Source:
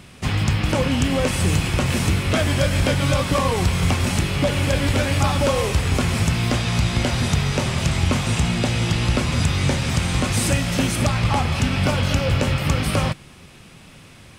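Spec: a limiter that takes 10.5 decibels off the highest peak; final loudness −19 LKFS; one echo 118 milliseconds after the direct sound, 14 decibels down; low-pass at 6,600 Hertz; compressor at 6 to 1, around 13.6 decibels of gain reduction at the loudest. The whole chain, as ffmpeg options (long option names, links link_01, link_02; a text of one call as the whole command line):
ffmpeg -i in.wav -af "lowpass=6600,acompressor=threshold=-30dB:ratio=6,alimiter=level_in=6dB:limit=-24dB:level=0:latency=1,volume=-6dB,aecho=1:1:118:0.2,volume=19.5dB" out.wav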